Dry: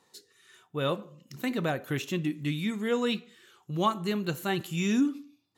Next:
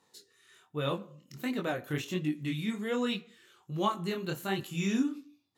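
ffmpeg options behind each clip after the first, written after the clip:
-af "flanger=delay=20:depth=7.1:speed=1.3"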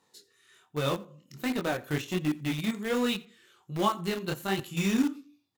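-filter_complex "[0:a]asplit=2[a][b];[b]acrusher=bits=4:mix=0:aa=0.000001,volume=-8dB[c];[a][c]amix=inputs=2:normalize=0,aecho=1:1:86:0.0668"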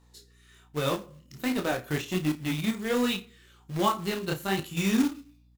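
-filter_complex "[0:a]acrusher=bits=4:mode=log:mix=0:aa=0.000001,aeval=exprs='val(0)+0.000891*(sin(2*PI*60*n/s)+sin(2*PI*2*60*n/s)/2+sin(2*PI*3*60*n/s)/3+sin(2*PI*4*60*n/s)/4+sin(2*PI*5*60*n/s)/5)':c=same,asplit=2[a][b];[b]adelay=32,volume=-10dB[c];[a][c]amix=inputs=2:normalize=0,volume=1dB"

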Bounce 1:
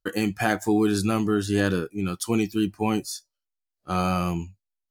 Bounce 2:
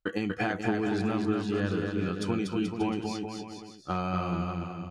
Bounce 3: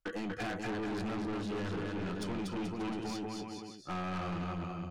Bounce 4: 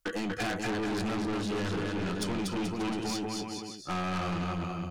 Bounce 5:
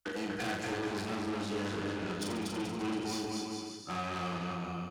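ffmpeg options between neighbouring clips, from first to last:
-filter_complex "[0:a]lowpass=3.7k,acompressor=threshold=-27dB:ratio=5,asplit=2[a][b];[b]aecho=0:1:240|432|585.6|708.5|806.8:0.631|0.398|0.251|0.158|0.1[c];[a][c]amix=inputs=2:normalize=0"
-filter_complex "[0:a]acrossover=split=370[a][b];[a]crystalizer=i=8:c=0[c];[c][b]amix=inputs=2:normalize=0,aeval=exprs='(tanh(50.1*val(0)+0.15)-tanh(0.15))/50.1':c=same"
-af "highshelf=f=4k:g=8,volume=4.5dB"
-filter_complex "[0:a]highpass=46,aecho=1:1:40|86|138.9|199.7|269.7:0.631|0.398|0.251|0.158|0.1,acrossover=split=240[a][b];[a]alimiter=level_in=9dB:limit=-24dB:level=0:latency=1,volume=-9dB[c];[c][b]amix=inputs=2:normalize=0,volume=-5dB"

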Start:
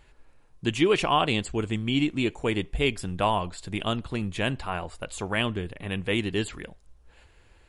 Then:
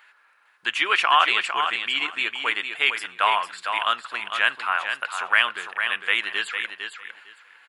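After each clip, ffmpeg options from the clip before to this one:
-af "highpass=f=1.4k:t=q:w=2.2,equalizer=f=7.4k:w=0.71:g=-10,aecho=1:1:454|908|1362:0.447|0.0759|0.0129,volume=7.5dB"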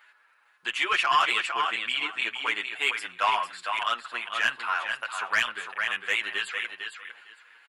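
-filter_complex "[0:a]asoftclip=type=tanh:threshold=-10dB,asplit=2[a][b];[b]adelay=7.7,afreqshift=-0.32[c];[a][c]amix=inputs=2:normalize=1"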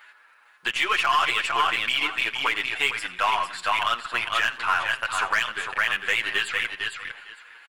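-af "alimiter=limit=-19dB:level=0:latency=1:release=245,aeval=exprs='0.112*(cos(1*acos(clip(val(0)/0.112,-1,1)))-cos(1*PI/2))+0.00355*(cos(8*acos(clip(val(0)/0.112,-1,1)))-cos(8*PI/2))':c=same,aecho=1:1:88|176|264:0.106|0.0434|0.0178,volume=7dB"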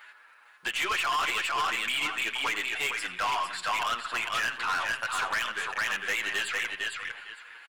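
-af "asoftclip=type=tanh:threshold=-24.5dB"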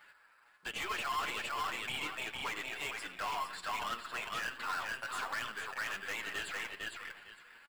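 -filter_complex "[0:a]flanger=delay=3.4:depth=4.2:regen=69:speed=1.3:shape=sinusoidal,asplit=2[a][b];[b]acrusher=samples=14:mix=1:aa=0.000001,volume=-9.5dB[c];[a][c]amix=inputs=2:normalize=0,volume=-5.5dB"

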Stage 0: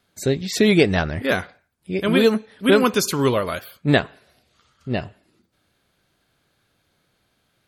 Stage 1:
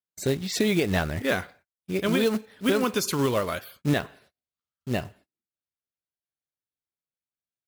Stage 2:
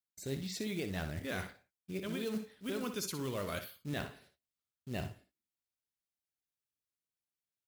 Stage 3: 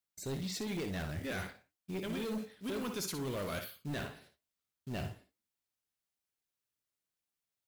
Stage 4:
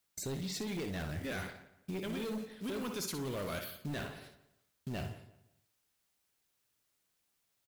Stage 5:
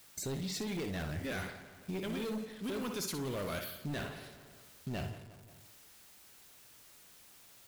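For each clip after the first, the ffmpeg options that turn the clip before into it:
-af "acrusher=bits=4:mode=log:mix=0:aa=0.000001,agate=range=-34dB:threshold=-49dB:ratio=16:detection=peak,alimiter=limit=-9.5dB:level=0:latency=1:release=111,volume=-3.5dB"
-af "equalizer=f=920:t=o:w=2.4:g=-5,areverse,acompressor=threshold=-35dB:ratio=5,areverse,aecho=1:1:60|76:0.316|0.133,volume=-1.5dB"
-af "asoftclip=type=hard:threshold=-36.5dB,flanger=delay=3.5:depth=6.6:regen=-86:speed=1.1:shape=triangular,volume=7dB"
-filter_complex "[0:a]acompressor=threshold=-53dB:ratio=2.5,asplit=2[a][b];[b]adelay=175,lowpass=f=3.2k:p=1,volume=-16.5dB,asplit=2[c][d];[d]adelay=175,lowpass=f=3.2k:p=1,volume=0.3,asplit=2[e][f];[f]adelay=175,lowpass=f=3.2k:p=1,volume=0.3[g];[a][c][e][g]amix=inputs=4:normalize=0,volume=10.5dB"
-af "aeval=exprs='val(0)+0.5*0.00251*sgn(val(0))':c=same"

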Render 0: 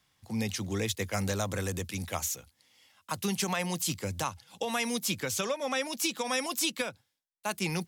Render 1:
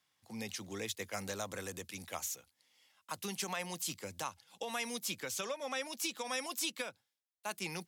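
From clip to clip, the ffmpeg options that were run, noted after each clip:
-af "highpass=f=330:p=1,volume=-6.5dB"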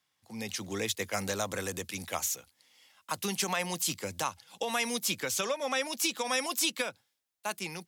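-af "dynaudnorm=f=100:g=9:m=7.5dB"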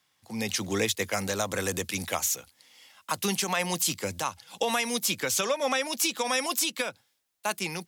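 -af "alimiter=limit=-22dB:level=0:latency=1:release=351,volume=7dB"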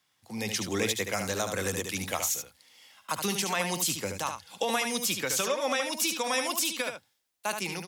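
-af "aecho=1:1:74:0.473,volume=-2dB"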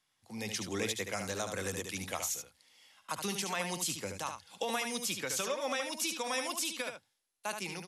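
-af "volume=-6dB" -ar 44100 -c:a mp2 -b:a 128k

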